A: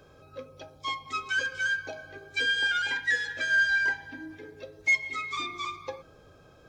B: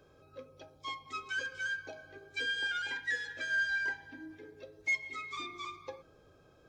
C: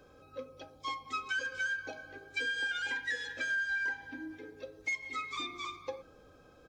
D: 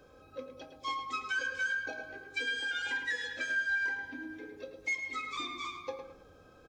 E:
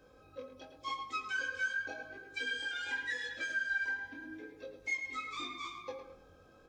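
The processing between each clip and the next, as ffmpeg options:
ffmpeg -i in.wav -af "equalizer=frequency=360:width_type=o:width=0.76:gain=3.5,volume=-8dB" out.wav
ffmpeg -i in.wav -af "aecho=1:1:3.9:0.4,acompressor=threshold=-34dB:ratio=6,volume=3dB" out.wav
ffmpeg -i in.wav -filter_complex "[0:a]asplit=2[link_01][link_02];[link_02]adelay=24,volume=-11dB[link_03];[link_01][link_03]amix=inputs=2:normalize=0,asplit=2[link_04][link_05];[link_05]adelay=108,lowpass=frequency=3400:poles=1,volume=-7dB,asplit=2[link_06][link_07];[link_07]adelay=108,lowpass=frequency=3400:poles=1,volume=0.36,asplit=2[link_08][link_09];[link_09]adelay=108,lowpass=frequency=3400:poles=1,volume=0.36,asplit=2[link_10][link_11];[link_11]adelay=108,lowpass=frequency=3400:poles=1,volume=0.36[link_12];[link_04][link_06][link_08][link_10][link_12]amix=inputs=5:normalize=0" out.wav
ffmpeg -i in.wav -af "flanger=delay=18:depth=4.9:speed=0.88" out.wav

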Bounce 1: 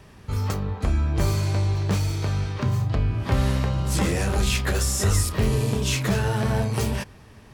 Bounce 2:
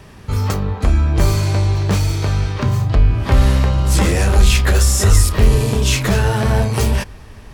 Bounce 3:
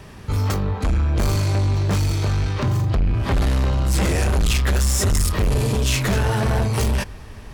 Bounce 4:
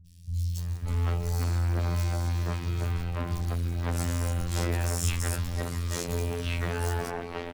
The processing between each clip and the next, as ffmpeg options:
ffmpeg -i in.wav -filter_complex "[0:a]asubboost=boost=4:cutoff=62,asplit=2[link_01][link_02];[link_02]acontrast=79,volume=-1.5dB[link_03];[link_01][link_03]amix=inputs=2:normalize=0,volume=-1.5dB" out.wav
ffmpeg -i in.wav -af "asoftclip=type=tanh:threshold=-15dB" out.wav
ffmpeg -i in.wav -filter_complex "[0:a]afftfilt=real='hypot(re,im)*cos(PI*b)':imag='0':win_size=2048:overlap=0.75,asplit=2[link_01][link_02];[link_02]acrusher=bits=2:mode=log:mix=0:aa=0.000001,volume=-6.5dB[link_03];[link_01][link_03]amix=inputs=2:normalize=0,acrossover=split=170|3800[link_04][link_05][link_06];[link_06]adelay=60[link_07];[link_05]adelay=580[link_08];[link_04][link_08][link_07]amix=inputs=3:normalize=0,volume=-9dB" out.wav

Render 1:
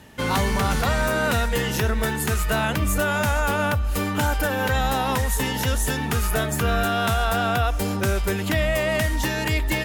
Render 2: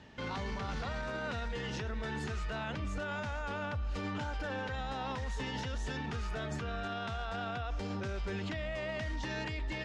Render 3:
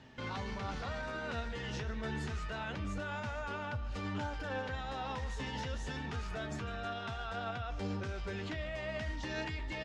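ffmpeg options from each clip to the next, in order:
ffmpeg -i in.wav -af "lowpass=frequency=5600:width=0.5412,lowpass=frequency=5600:width=1.3066,alimiter=limit=-22.5dB:level=0:latency=1:release=33,volume=-7.5dB" out.wav
ffmpeg -i in.wav -af "flanger=delay=7.5:depth=7.1:regen=52:speed=0.28:shape=triangular,aecho=1:1:151:0.133,volume=2.5dB" out.wav

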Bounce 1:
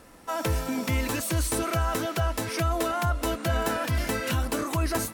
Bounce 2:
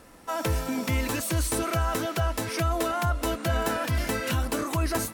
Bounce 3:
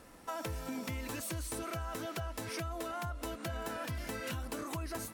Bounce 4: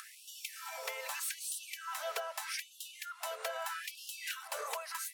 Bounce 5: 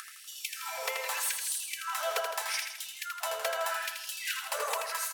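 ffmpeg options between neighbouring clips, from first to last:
ffmpeg -i in.wav -af anull out.wav
ffmpeg -i in.wav -af "acompressor=threshold=-32dB:ratio=6,volume=-4.5dB" out.wav
ffmpeg -i in.wav -af "acompressor=mode=upward:threshold=-43dB:ratio=2.5,afftfilt=real='re*gte(b*sr/1024,400*pow(2700/400,0.5+0.5*sin(2*PI*0.8*pts/sr)))':imag='im*gte(b*sr/1024,400*pow(2700/400,0.5+0.5*sin(2*PI*0.8*pts/sr)))':win_size=1024:overlap=0.75,volume=4dB" out.wav
ffmpeg -i in.wav -filter_complex "[0:a]asplit=2[link_01][link_02];[link_02]aeval=exprs='sgn(val(0))*max(abs(val(0))-0.00266,0)':channel_layout=same,volume=-10dB[link_03];[link_01][link_03]amix=inputs=2:normalize=0,aecho=1:1:81|162|243|324|405|486|567:0.501|0.266|0.141|0.0746|0.0395|0.021|0.0111,volume=3.5dB" out.wav

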